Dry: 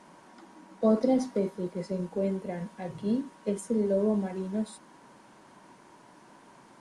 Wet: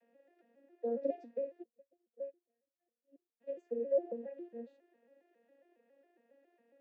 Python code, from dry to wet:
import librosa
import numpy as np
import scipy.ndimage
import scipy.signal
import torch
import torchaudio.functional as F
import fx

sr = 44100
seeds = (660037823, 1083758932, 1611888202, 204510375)

y = fx.vocoder_arp(x, sr, chord='minor triad', root=58, every_ms=137)
y = fx.vowel_filter(y, sr, vowel='e')
y = fx.upward_expand(y, sr, threshold_db=-50.0, expansion=2.5, at=(1.62, 3.4), fade=0.02)
y = y * 10.0 ** (1.0 / 20.0)